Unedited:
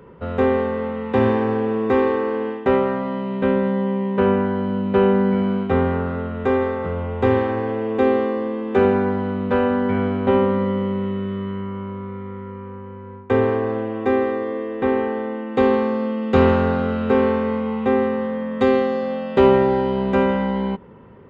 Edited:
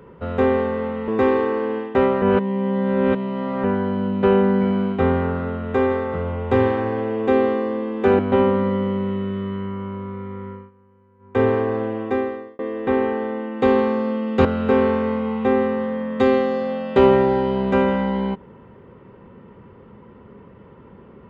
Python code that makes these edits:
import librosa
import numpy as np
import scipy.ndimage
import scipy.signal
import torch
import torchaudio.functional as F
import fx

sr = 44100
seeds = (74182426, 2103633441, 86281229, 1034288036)

y = fx.edit(x, sr, fx.cut(start_s=1.08, length_s=0.71),
    fx.reverse_span(start_s=2.93, length_s=1.42),
    fx.cut(start_s=8.9, length_s=1.24),
    fx.fade_down_up(start_s=12.45, length_s=0.9, db=-19.5, fade_s=0.21),
    fx.fade_out_span(start_s=13.93, length_s=0.61),
    fx.cut(start_s=16.4, length_s=0.46), tone=tone)